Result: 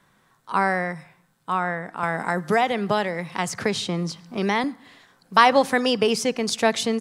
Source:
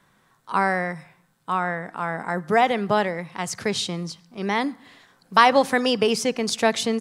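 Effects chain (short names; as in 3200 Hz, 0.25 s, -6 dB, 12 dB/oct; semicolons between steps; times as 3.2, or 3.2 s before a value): 2.03–4.64 three-band squash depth 70%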